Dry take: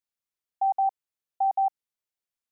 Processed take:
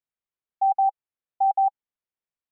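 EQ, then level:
dynamic equaliser 820 Hz, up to +7 dB, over −39 dBFS, Q 6.2
high-frequency loss of the air 350 metres
0.0 dB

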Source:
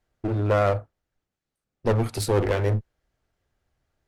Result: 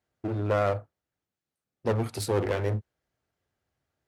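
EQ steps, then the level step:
high-pass filter 86 Hz
−4.0 dB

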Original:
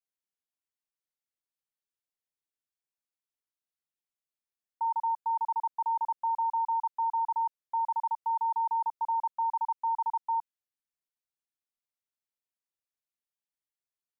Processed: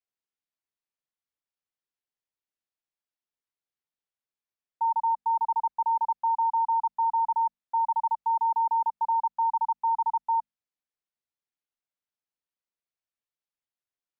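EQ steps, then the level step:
mains-hum notches 50/100/150/200/250 Hz
dynamic equaliser 870 Hz, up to +5 dB, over −41 dBFS, Q 3.2
high-frequency loss of the air 95 metres
0.0 dB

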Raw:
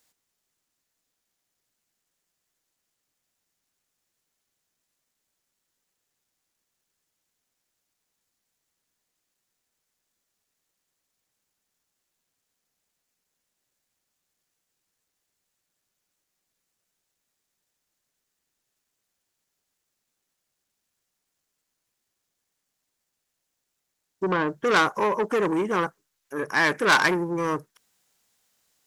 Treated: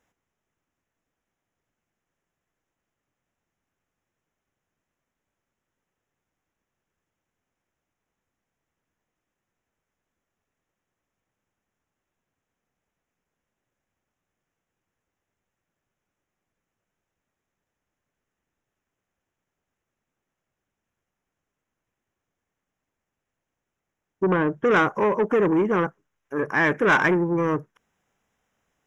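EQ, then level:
dynamic equaliser 1,000 Hz, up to −4 dB, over −31 dBFS, Q 1.5
moving average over 10 samples
low-shelf EQ 160 Hz +5.5 dB
+3.5 dB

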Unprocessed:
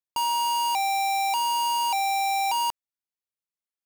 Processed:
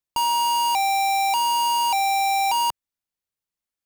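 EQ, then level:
low-shelf EQ 150 Hz +8 dB
+3.5 dB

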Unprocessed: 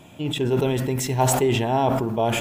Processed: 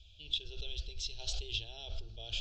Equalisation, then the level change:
inverse Chebyshev band-stop filter 120–2,100 Hz, stop band 40 dB
Bessel low-pass filter 2,700 Hz, order 8
+9.0 dB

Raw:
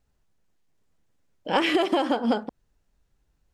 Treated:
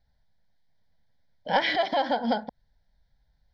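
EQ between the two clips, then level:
high shelf with overshoot 6,400 Hz −12.5 dB, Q 1.5
phaser with its sweep stopped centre 1,800 Hz, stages 8
+2.0 dB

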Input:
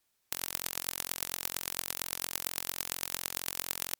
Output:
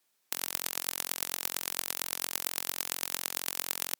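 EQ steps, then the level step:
high-pass filter 190 Hz 12 dB per octave
+2.0 dB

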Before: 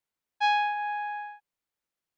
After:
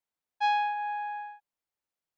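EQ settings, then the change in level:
parametric band 770 Hz +4 dB 1.1 octaves
−5.0 dB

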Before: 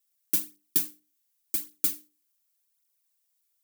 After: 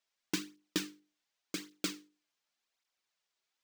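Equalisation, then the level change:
high-frequency loss of the air 160 metres
parametric band 90 Hz −9 dB 1.6 octaves
+6.5 dB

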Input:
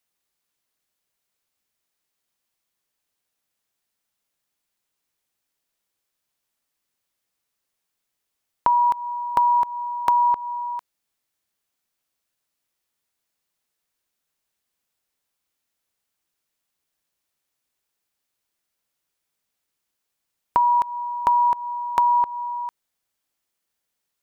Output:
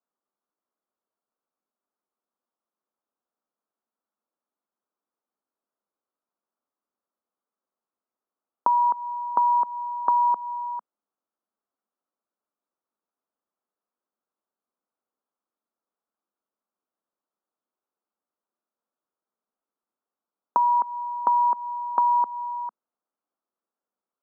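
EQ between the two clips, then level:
elliptic band-pass filter 210–1,300 Hz
−1.5 dB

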